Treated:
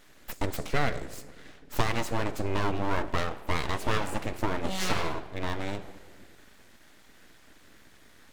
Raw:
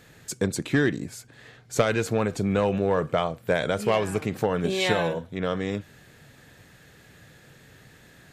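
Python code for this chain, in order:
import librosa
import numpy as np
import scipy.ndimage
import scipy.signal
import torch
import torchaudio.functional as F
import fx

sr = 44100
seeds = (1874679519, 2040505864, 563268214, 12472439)

y = fx.room_shoebox(x, sr, seeds[0], volume_m3=1100.0, walls='mixed', distance_m=0.47)
y = np.abs(y)
y = F.gain(torch.from_numpy(y), -2.5).numpy()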